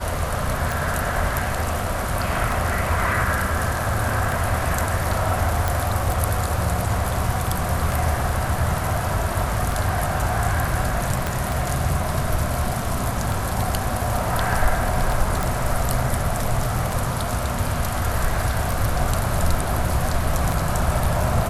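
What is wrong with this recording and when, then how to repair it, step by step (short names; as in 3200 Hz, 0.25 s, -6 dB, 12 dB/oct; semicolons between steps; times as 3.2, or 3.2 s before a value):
tick 33 1/3 rpm
5.68 pop
11.27 pop
15.43 pop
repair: de-click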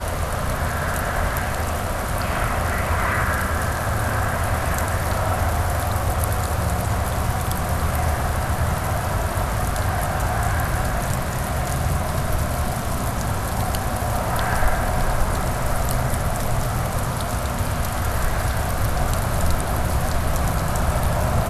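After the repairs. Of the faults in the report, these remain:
11.27 pop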